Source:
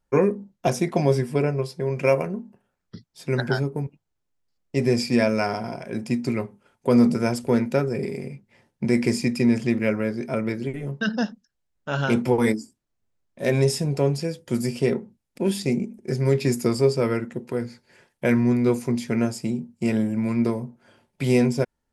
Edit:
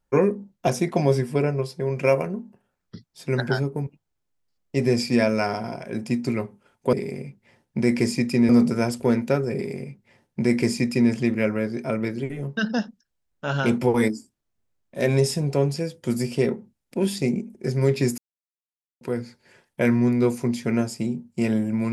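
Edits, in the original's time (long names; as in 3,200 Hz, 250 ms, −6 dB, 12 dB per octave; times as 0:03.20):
0:07.99–0:09.55: duplicate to 0:06.93
0:16.62–0:17.45: silence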